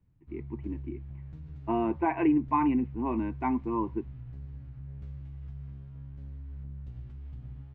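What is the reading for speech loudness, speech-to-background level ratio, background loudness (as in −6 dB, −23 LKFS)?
−29.5 LKFS, 14.5 dB, −44.0 LKFS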